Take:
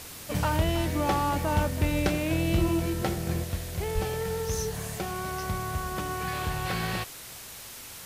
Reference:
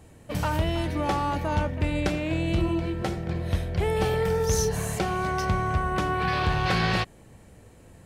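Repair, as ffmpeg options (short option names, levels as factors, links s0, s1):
-filter_complex "[0:a]asplit=3[s0][s1][s2];[s0]afade=t=out:st=3.94:d=0.02[s3];[s1]highpass=f=140:w=0.5412,highpass=f=140:w=1.3066,afade=t=in:st=3.94:d=0.02,afade=t=out:st=4.06:d=0.02[s4];[s2]afade=t=in:st=4.06:d=0.02[s5];[s3][s4][s5]amix=inputs=3:normalize=0,afwtdn=0.0079,asetnsamples=n=441:p=0,asendcmd='3.44 volume volume 6.5dB',volume=1"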